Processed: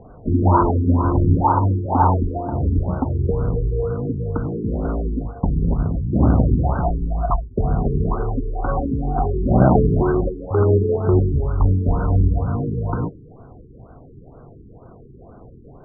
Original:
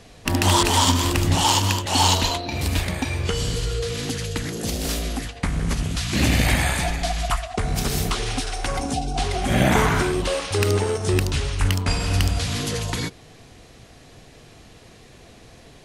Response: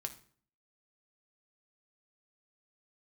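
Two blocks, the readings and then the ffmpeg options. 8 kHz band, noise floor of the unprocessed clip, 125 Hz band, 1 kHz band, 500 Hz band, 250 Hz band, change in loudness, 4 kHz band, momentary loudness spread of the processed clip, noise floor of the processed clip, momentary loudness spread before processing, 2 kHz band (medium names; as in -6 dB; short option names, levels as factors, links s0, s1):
under -40 dB, -47 dBFS, +5.0 dB, +2.5 dB, +4.5 dB, +5.0 dB, +2.5 dB, under -40 dB, 8 LU, -44 dBFS, 9 LU, -13.5 dB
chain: -filter_complex "[0:a]asplit=2[s0][s1];[1:a]atrim=start_sample=2205[s2];[s1][s2]afir=irnorm=-1:irlink=0,volume=0.355[s3];[s0][s3]amix=inputs=2:normalize=0,afftfilt=real='re*lt(b*sr/1024,430*pow(1600/430,0.5+0.5*sin(2*PI*2.1*pts/sr)))':imag='im*lt(b*sr/1024,430*pow(1600/430,0.5+0.5*sin(2*PI*2.1*pts/sr)))':win_size=1024:overlap=0.75,volume=1.41"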